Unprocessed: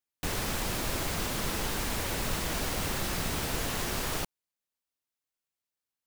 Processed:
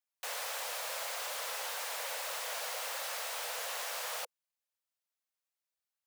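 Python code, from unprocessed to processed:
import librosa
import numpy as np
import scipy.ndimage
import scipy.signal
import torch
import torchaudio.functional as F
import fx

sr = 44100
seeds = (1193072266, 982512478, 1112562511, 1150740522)

p1 = scipy.signal.sosfilt(scipy.signal.butter(16, 480.0, 'highpass', fs=sr, output='sos'), x)
p2 = np.clip(p1, -10.0 ** (-39.0 / 20.0), 10.0 ** (-39.0 / 20.0))
p3 = p1 + F.gain(torch.from_numpy(p2), -6.0).numpy()
y = F.gain(torch.from_numpy(p3), -6.0).numpy()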